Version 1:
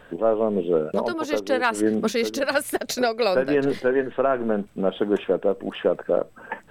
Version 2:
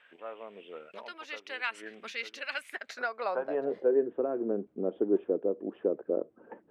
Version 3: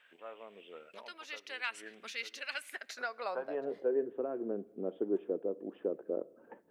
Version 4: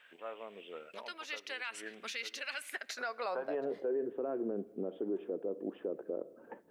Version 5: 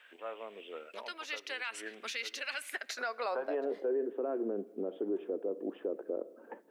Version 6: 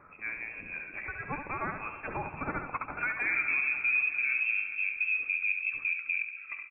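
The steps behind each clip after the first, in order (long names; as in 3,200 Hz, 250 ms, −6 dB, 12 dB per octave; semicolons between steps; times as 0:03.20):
band-pass filter sweep 2,400 Hz → 350 Hz, 0:02.63–0:04.06; level −2.5 dB
high-shelf EQ 4,100 Hz +11.5 dB; on a send at −22.5 dB: convolution reverb RT60 1.3 s, pre-delay 5 ms; on the sum: level −6 dB
brickwall limiter −31 dBFS, peak gain reduction 10 dB; level +3.5 dB
high-pass filter 230 Hz 24 dB per octave; level +2 dB
feedback delay that plays each chunk backwards 212 ms, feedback 72%, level −12.5 dB; voice inversion scrambler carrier 2,900 Hz; repeating echo 70 ms, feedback 28%, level −7 dB; level +4 dB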